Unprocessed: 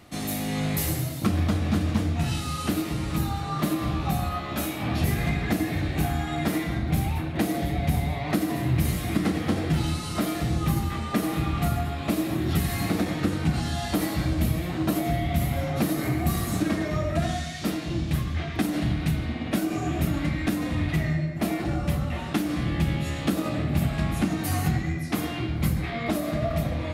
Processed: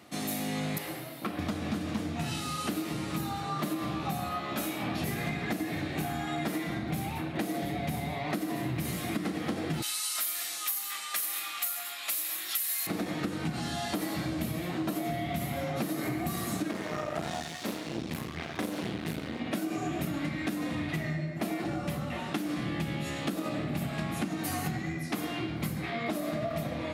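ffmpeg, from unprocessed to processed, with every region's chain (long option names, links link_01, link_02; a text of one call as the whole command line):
ffmpeg -i in.wav -filter_complex "[0:a]asettb=1/sr,asplit=3[link_01][link_02][link_03];[link_01]atrim=end=0.784[link_04];[link_02]atrim=start=0.78:end=1.39,asetpts=PTS-STARTPTS,afade=type=in:duration=0.004:curve=qsin,afade=type=out:start_time=0.606:duration=0.004:curve=qsin,acrossover=split=8900[link_05][link_06];[link_06]acompressor=threshold=-44dB:ratio=4:attack=1:release=60[link_07];[link_05][link_07]amix=inputs=2:normalize=0,highpass=frequency=490:poles=1,equalizer=frequency=6700:width_type=o:width=1.2:gain=-13.5[link_08];[link_03]atrim=start=1.386[link_09];[link_04][link_08]acrossfade=duration=0.004:curve1=hsin:curve2=qsin[link_10];[link_10][link_09]acrossfade=duration=0.004:curve1=qsin:curve2=hsin,asettb=1/sr,asplit=3[link_11][link_12][link_13];[link_11]atrim=end=9.824[link_14];[link_12]atrim=start=9.82:end=12.87,asetpts=PTS-STARTPTS,afade=type=in:duration=0.004:curve=qsin,afade=type=out:start_time=3.046:duration=0.004:curve=qsin,highpass=1400,aemphasis=mode=production:type=75fm[link_15];[link_13]atrim=start=12.866[link_16];[link_14][link_15]acrossfade=duration=0.004:curve1=hsin:curve2=qsin[link_17];[link_17][link_16]acrossfade=duration=0.004:curve1=qsin:curve2=hsin,asettb=1/sr,asplit=3[link_18][link_19][link_20];[link_18]atrim=end=16.714[link_21];[link_19]atrim=start=16.71:end=19.4,asetpts=PTS-STARTPTS,afade=type=in:duration=0.004:curve=qsin,afade=type=out:start_time=2.686:duration=0.004:curve=qsin,asplit=2[link_22][link_23];[link_23]adelay=36,volume=-3dB[link_24];[link_22][link_24]amix=inputs=2:normalize=0,atrim=end_sample=118629,aeval=exprs='max(val(0),0)':channel_layout=same[link_25];[link_20]atrim=start=19.396[link_26];[link_21][link_25]acrossfade=duration=0.004:curve1=hsin:curve2=qsin[link_27];[link_27][link_26]acrossfade=duration=0.004:curve1=qsin:curve2=hsin,highpass=170,acompressor=threshold=-27dB:ratio=6,volume=-1.5dB" out.wav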